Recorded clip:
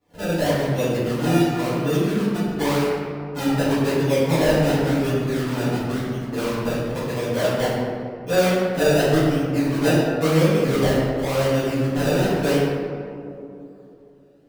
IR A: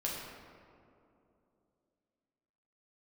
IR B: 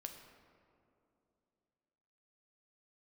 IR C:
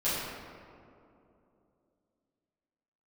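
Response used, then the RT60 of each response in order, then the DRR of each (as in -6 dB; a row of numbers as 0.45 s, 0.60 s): C; 2.8 s, 2.8 s, 2.8 s; -4.5 dB, 4.0 dB, -14.0 dB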